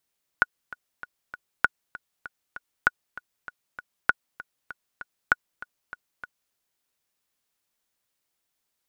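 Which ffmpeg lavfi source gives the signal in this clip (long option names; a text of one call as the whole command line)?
ffmpeg -f lavfi -i "aevalsrc='pow(10,(-4.5-19*gte(mod(t,4*60/196),60/196))/20)*sin(2*PI*1460*mod(t,60/196))*exp(-6.91*mod(t,60/196)/0.03)':duration=6.12:sample_rate=44100" out.wav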